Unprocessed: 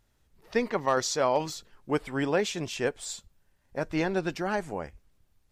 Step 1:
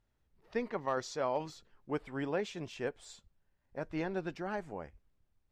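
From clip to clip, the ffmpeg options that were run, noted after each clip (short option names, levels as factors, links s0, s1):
-af "lowpass=f=2700:p=1,volume=0.398"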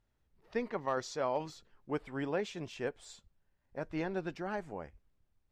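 -af anull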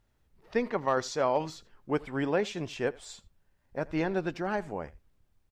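-af "aecho=1:1:82:0.075,volume=2.11"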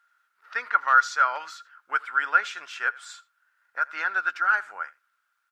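-af "highpass=f=1400:t=q:w=14,volume=1.19"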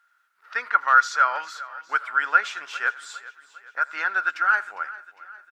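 -af "aecho=1:1:404|808|1212|1616:0.126|0.0642|0.0327|0.0167,volume=1.26"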